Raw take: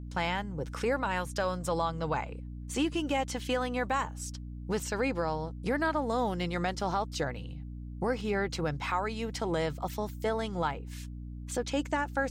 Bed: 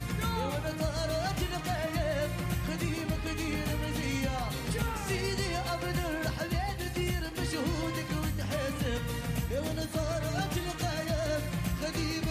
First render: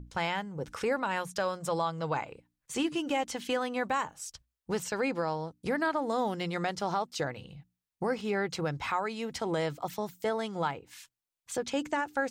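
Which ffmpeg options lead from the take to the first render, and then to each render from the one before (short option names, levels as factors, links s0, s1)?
-af "bandreject=f=60:t=h:w=6,bandreject=f=120:t=h:w=6,bandreject=f=180:t=h:w=6,bandreject=f=240:t=h:w=6,bandreject=f=300:t=h:w=6"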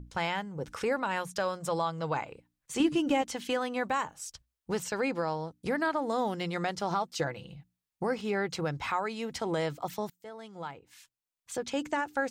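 -filter_complex "[0:a]asettb=1/sr,asplit=3[s0][s1][s2];[s0]atrim=end=2.804[s3];[s1]atrim=start=2.8:end=3.22,asetpts=PTS-STARTPTS,afade=t=in:d=0.004:c=qsin,afade=t=out:st=0.416:d=0.004:c=qsin,lowshelf=f=320:g=10[s4];[s2]atrim=start=3.216[s5];[s3][s4]acrossfade=d=0.004:c1=hsin:c2=qsin[s6];[s6][s5]acrossfade=d=0.004:c1=qsin:c2=hsin,asettb=1/sr,asplit=3[s7][s8][s9];[s7]atrim=end=6.904[s10];[s8]atrim=start=6.9:end=7.54,asetpts=PTS-STARTPTS,afade=t=in:d=0.004:c=qsin,afade=t=out:st=0.636:d=0.004:c=qsin,aecho=1:1:5.9:0.41,atrim=end_sample=28224[s11];[s9]atrim=start=7.536[s12];[s10][s11]acrossfade=d=0.004:c1=hsin:c2=qsin[s13];[s13][s12]acrossfade=d=0.004:c1=qsin:c2=hsin,asplit=2[s14][s15];[s14]atrim=end=10.1,asetpts=PTS-STARTPTS,afade=t=out:st=10.096:d=0.004:c=hsin:silence=0.0944061[s16];[s15]atrim=start=10.1,asetpts=PTS-STARTPTS,afade=t=in:d=1.83:silence=0.0944061[s17];[s16][s17]concat=n=2:v=0:a=1"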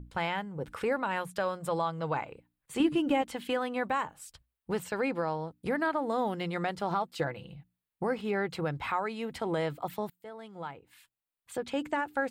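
-af "equalizer=f=6000:w=1.8:g=-13.5"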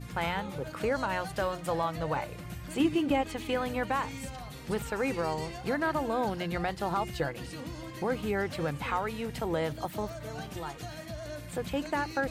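-filter_complex "[1:a]volume=0.355[s0];[0:a][s0]amix=inputs=2:normalize=0"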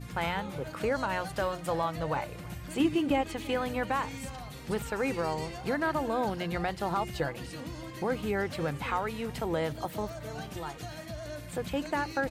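-af "aecho=1:1:331:0.0668"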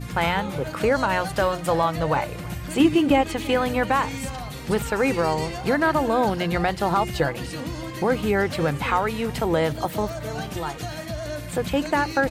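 -af "volume=2.82"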